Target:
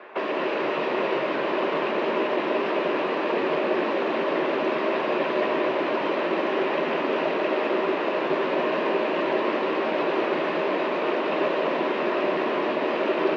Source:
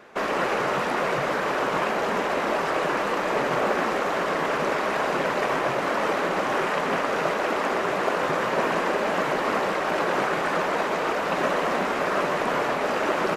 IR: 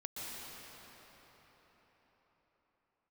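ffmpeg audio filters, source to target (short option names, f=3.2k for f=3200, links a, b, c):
-filter_complex "[0:a]acrossover=split=420|3000[a][b][c];[b]acompressor=threshold=-37dB:ratio=6[d];[a][d][c]amix=inputs=3:normalize=0,highpass=f=200:w=0.5412,highpass=f=200:w=1.3066,equalizer=f=220:t=q:w=4:g=-4,equalizer=f=360:t=q:w=4:g=7,equalizer=f=610:t=q:w=4:g=7,equalizer=f=1k:t=q:w=4:g=8,equalizer=f=1.8k:t=q:w=4:g=4,equalizer=f=2.6k:t=q:w=4:g=6,lowpass=f=3.8k:w=0.5412,lowpass=f=3.8k:w=1.3066,asplit=2[e][f];[1:a]atrim=start_sample=2205,adelay=13[g];[f][g]afir=irnorm=-1:irlink=0,volume=-2dB[h];[e][h]amix=inputs=2:normalize=0"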